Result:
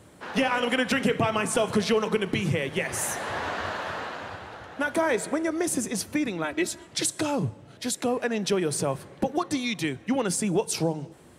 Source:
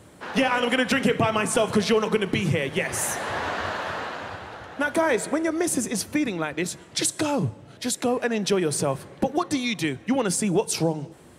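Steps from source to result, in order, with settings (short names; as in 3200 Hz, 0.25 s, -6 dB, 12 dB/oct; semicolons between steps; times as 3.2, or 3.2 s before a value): 6.44–6.87 comb 3.1 ms, depth 84%; gain -2.5 dB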